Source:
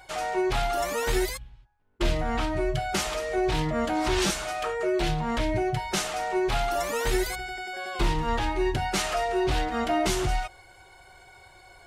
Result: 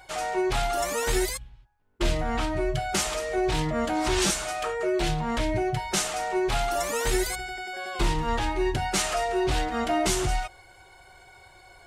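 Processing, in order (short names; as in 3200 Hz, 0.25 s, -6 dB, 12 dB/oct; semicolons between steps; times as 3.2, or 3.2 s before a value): dynamic EQ 8200 Hz, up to +6 dB, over -47 dBFS, Q 1.1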